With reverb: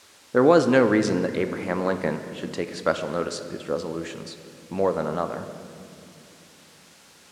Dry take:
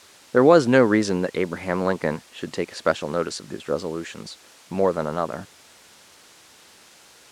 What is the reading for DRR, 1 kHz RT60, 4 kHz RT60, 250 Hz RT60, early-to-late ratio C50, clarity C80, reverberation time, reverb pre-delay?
8.0 dB, 2.3 s, 1.6 s, 4.8 s, 9.5 dB, 10.5 dB, 2.8 s, 4 ms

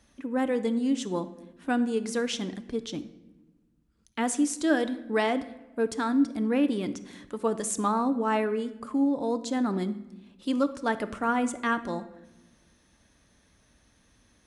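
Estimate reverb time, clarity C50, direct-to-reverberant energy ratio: 1.1 s, 13.5 dB, 11.0 dB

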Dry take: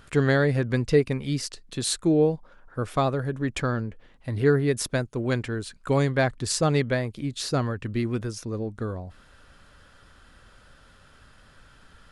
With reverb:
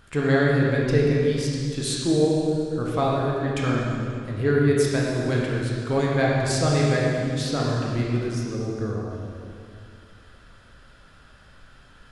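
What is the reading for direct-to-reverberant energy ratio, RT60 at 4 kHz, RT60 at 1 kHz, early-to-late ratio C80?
-4.0 dB, 2.1 s, 2.2 s, 0.5 dB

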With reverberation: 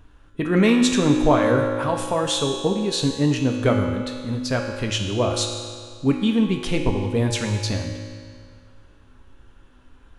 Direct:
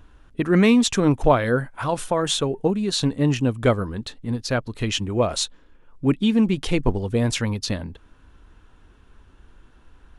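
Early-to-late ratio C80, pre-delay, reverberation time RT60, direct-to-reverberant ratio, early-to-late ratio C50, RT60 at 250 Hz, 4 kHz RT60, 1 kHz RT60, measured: 5.5 dB, 4 ms, 2.0 s, 2.0 dB, 4.5 dB, 2.0 s, 1.8 s, 2.0 s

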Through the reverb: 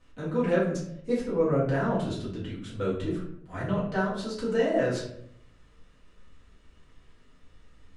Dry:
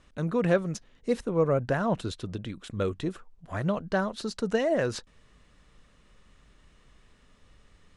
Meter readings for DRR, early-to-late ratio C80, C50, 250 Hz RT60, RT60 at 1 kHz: -8.5 dB, 7.5 dB, 4.0 dB, 0.90 s, 0.60 s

